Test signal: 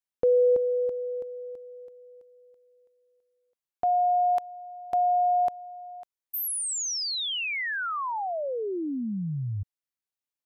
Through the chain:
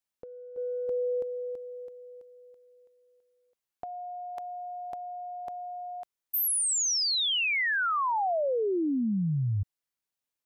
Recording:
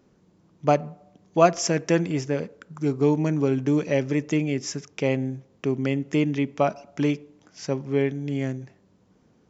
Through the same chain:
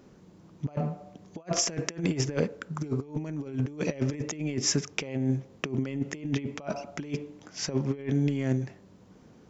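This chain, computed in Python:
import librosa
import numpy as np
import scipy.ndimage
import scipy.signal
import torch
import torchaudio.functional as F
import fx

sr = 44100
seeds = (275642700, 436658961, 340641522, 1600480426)

y = fx.over_compress(x, sr, threshold_db=-29.0, ratio=-0.5)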